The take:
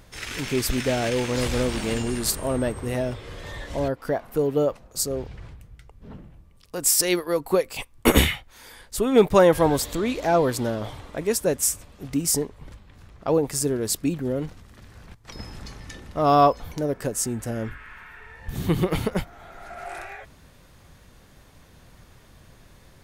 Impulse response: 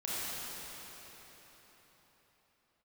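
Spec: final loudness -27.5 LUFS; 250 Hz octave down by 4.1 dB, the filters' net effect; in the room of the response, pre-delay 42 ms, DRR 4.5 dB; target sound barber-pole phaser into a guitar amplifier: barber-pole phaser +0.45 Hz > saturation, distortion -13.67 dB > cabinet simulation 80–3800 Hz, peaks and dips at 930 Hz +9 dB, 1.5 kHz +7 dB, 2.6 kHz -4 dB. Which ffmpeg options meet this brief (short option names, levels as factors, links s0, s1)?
-filter_complex "[0:a]equalizer=f=250:t=o:g=-5.5,asplit=2[s0][s1];[1:a]atrim=start_sample=2205,adelay=42[s2];[s1][s2]afir=irnorm=-1:irlink=0,volume=0.299[s3];[s0][s3]amix=inputs=2:normalize=0,asplit=2[s4][s5];[s5]afreqshift=0.45[s6];[s4][s6]amix=inputs=2:normalize=1,asoftclip=threshold=0.168,highpass=80,equalizer=f=930:t=q:w=4:g=9,equalizer=f=1500:t=q:w=4:g=7,equalizer=f=2600:t=q:w=4:g=-4,lowpass=f=3800:w=0.5412,lowpass=f=3800:w=1.3066,volume=1.06"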